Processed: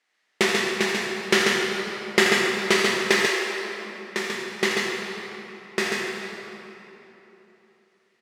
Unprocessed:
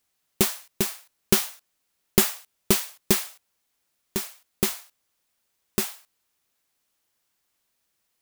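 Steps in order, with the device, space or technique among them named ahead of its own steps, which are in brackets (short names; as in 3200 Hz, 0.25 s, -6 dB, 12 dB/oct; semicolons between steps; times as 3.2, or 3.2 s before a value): station announcement (BPF 350–4400 Hz; bell 1900 Hz +10.5 dB 0.43 oct; loudspeakers at several distances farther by 28 m -9 dB, 48 m -4 dB; reverb RT60 3.4 s, pre-delay 7 ms, DRR -0.5 dB); 3.26–4.28 HPF 370 Hz -> 160 Hz 24 dB/oct; gain +3.5 dB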